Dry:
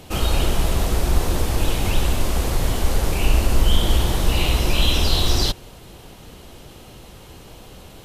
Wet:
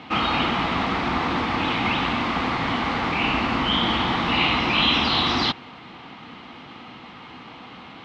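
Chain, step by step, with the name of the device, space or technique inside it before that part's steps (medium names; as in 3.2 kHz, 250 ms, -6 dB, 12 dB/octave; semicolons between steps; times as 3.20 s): kitchen radio (cabinet simulation 200–3800 Hz, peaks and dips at 250 Hz +6 dB, 400 Hz -9 dB, 570 Hz -9 dB, 850 Hz +4 dB, 1.2 kHz +8 dB, 2.1 kHz +7 dB); trim +3.5 dB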